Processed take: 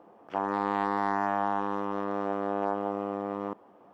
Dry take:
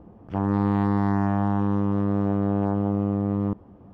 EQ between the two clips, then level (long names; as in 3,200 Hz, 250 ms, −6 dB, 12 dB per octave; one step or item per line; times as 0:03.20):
high-pass filter 570 Hz 12 dB per octave
+3.0 dB